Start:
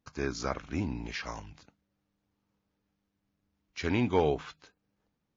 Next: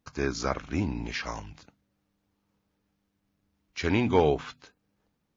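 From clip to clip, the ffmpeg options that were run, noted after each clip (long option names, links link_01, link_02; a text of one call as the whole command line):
ffmpeg -i in.wav -af "bandreject=frequency=123.8:width_type=h:width=4,bandreject=frequency=247.6:width_type=h:width=4,volume=4dB" out.wav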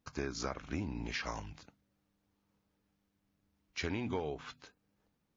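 ffmpeg -i in.wav -af "acompressor=threshold=-30dB:ratio=10,volume=-3dB" out.wav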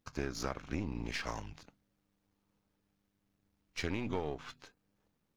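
ffmpeg -i in.wav -af "aeval=exprs='if(lt(val(0),0),0.447*val(0),val(0))':channel_layout=same,volume=2dB" out.wav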